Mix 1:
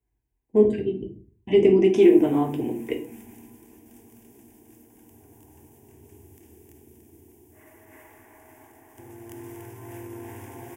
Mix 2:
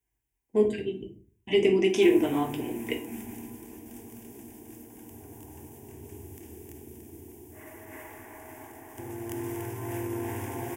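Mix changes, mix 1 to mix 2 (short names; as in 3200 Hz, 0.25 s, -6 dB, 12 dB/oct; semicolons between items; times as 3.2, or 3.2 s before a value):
speech: add tilt shelf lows -7 dB, about 1200 Hz; background +6.0 dB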